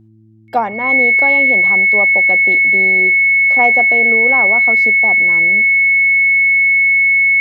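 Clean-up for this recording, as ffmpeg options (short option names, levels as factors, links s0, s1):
-af "bandreject=f=109.9:t=h:w=4,bandreject=f=219.8:t=h:w=4,bandreject=f=329.7:t=h:w=4,bandreject=f=2200:w=30"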